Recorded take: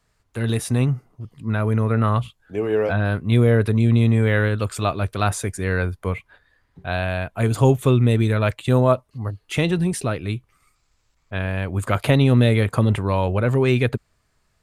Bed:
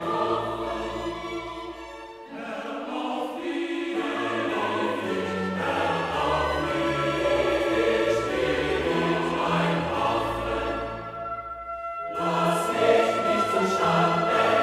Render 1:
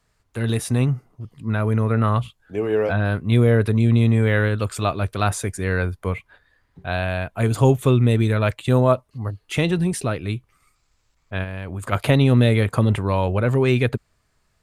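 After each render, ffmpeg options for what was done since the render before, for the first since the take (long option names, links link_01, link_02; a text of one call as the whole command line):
ffmpeg -i in.wav -filter_complex "[0:a]asplit=3[link_01][link_02][link_03];[link_01]afade=type=out:start_time=11.43:duration=0.02[link_04];[link_02]acompressor=threshold=-25dB:ratio=6:attack=3.2:release=140:knee=1:detection=peak,afade=type=in:start_time=11.43:duration=0.02,afade=type=out:start_time=11.91:duration=0.02[link_05];[link_03]afade=type=in:start_time=11.91:duration=0.02[link_06];[link_04][link_05][link_06]amix=inputs=3:normalize=0" out.wav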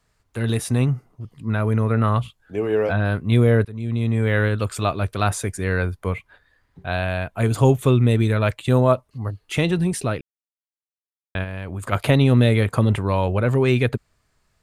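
ffmpeg -i in.wav -filter_complex "[0:a]asplit=4[link_01][link_02][link_03][link_04];[link_01]atrim=end=3.65,asetpts=PTS-STARTPTS,afade=type=out:start_time=3.646:duration=0.004:curve=hsin:silence=0.0891251[link_05];[link_02]atrim=start=3.65:end=10.21,asetpts=PTS-STARTPTS,afade=type=in:duration=0.77:silence=0.0891251,afade=type=out:start_time=6.556:duration=0.004:curve=hsin[link_06];[link_03]atrim=start=10.21:end=11.35,asetpts=PTS-STARTPTS,volume=0[link_07];[link_04]atrim=start=11.35,asetpts=PTS-STARTPTS,afade=type=in:duration=0.004:curve=hsin[link_08];[link_05][link_06][link_07][link_08]concat=n=4:v=0:a=1" out.wav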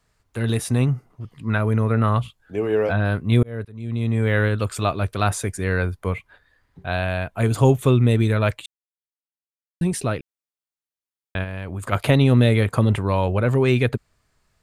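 ffmpeg -i in.wav -filter_complex "[0:a]asettb=1/sr,asplit=3[link_01][link_02][link_03];[link_01]atrim=end=1.104[link_04];[link_02]atrim=start=1.1:end=1.58,asetpts=PTS-STARTPTS,afade=type=in:duration=0.004:curve=qsin,afade=type=out:start_time=0.476:duration=0.004:curve=qsin,equalizer=frequency=1900:width=0.55:gain=6[link_05];[link_03]atrim=start=1.576[link_06];[link_04][link_05]acrossfade=duration=0.004:curve1=hsin:curve2=qsin[link_07];[link_07][link_06]acrossfade=duration=0.004:curve1=qsin:curve2=hsin,asplit=4[link_08][link_09][link_10][link_11];[link_08]atrim=end=3.43,asetpts=PTS-STARTPTS,afade=type=out:start_time=3.426:duration=0.004:curve=hsin[link_12];[link_09]atrim=start=3.43:end=8.66,asetpts=PTS-STARTPTS,afade=type=in:duration=0.9:curve=qsin,afade=type=out:start_time=5.226:duration=0.004:curve=hsin[link_13];[link_10]atrim=start=8.66:end=9.81,asetpts=PTS-STARTPTS,volume=0[link_14];[link_11]atrim=start=9.81,asetpts=PTS-STARTPTS,afade=type=in:duration=0.004:curve=hsin[link_15];[link_12][link_13][link_14][link_15]concat=n=4:v=0:a=1" out.wav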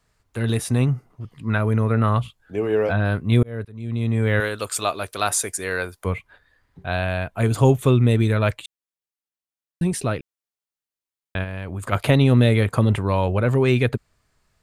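ffmpeg -i in.wav -filter_complex "[0:a]asettb=1/sr,asplit=3[link_01][link_02][link_03];[link_01]atrim=end=4.404[link_04];[link_02]atrim=start=4.4:end=6.05,asetpts=PTS-STARTPTS,afade=type=in:duration=0.004:curve=qsin,afade=type=out:start_time=1.646:duration=0.004:curve=qsin,bass=frequency=250:gain=-15,treble=frequency=4000:gain=9[link_05];[link_03]atrim=start=6.046[link_06];[link_04][link_05]acrossfade=duration=0.004:curve1=hsin:curve2=qsin[link_07];[link_07][link_06]acrossfade=duration=0.004:curve1=qsin:curve2=hsin" out.wav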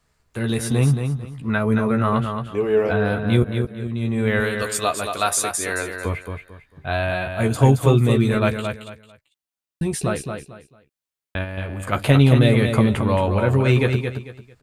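ffmpeg -i in.wav -filter_complex "[0:a]asplit=2[link_01][link_02];[link_02]adelay=14,volume=-6.5dB[link_03];[link_01][link_03]amix=inputs=2:normalize=0,asplit=2[link_04][link_05];[link_05]aecho=0:1:223|446|669:0.473|0.123|0.032[link_06];[link_04][link_06]amix=inputs=2:normalize=0" out.wav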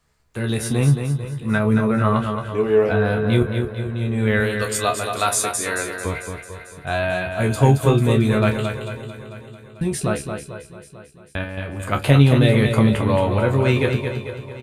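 ffmpeg -i in.wav -filter_complex "[0:a]asplit=2[link_01][link_02];[link_02]adelay=28,volume=-8.5dB[link_03];[link_01][link_03]amix=inputs=2:normalize=0,aecho=1:1:444|888|1332|1776|2220:0.211|0.101|0.0487|0.0234|0.0112" out.wav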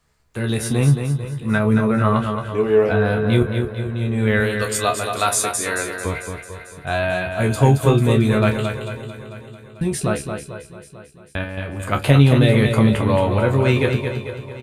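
ffmpeg -i in.wav -af "volume=1dB,alimiter=limit=-2dB:level=0:latency=1" out.wav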